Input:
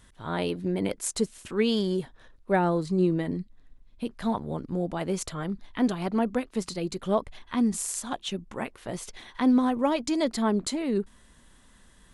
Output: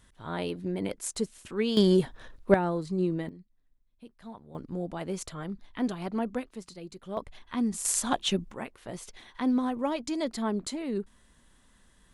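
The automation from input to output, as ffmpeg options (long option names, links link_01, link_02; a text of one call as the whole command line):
ffmpeg -i in.wav -af "asetnsamples=nb_out_samples=441:pad=0,asendcmd='1.77 volume volume 6dB;2.54 volume volume -4.5dB;3.29 volume volume -17dB;4.55 volume volume -5dB;6.55 volume volume -12dB;7.17 volume volume -4dB;7.85 volume volume 5dB;8.51 volume volume -5dB',volume=-4dB" out.wav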